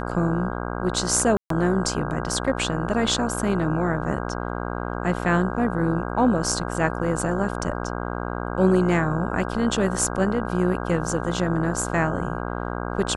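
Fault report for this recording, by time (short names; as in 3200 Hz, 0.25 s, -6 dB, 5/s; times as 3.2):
buzz 60 Hz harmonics 27 -29 dBFS
1.37–1.5 gap 0.133 s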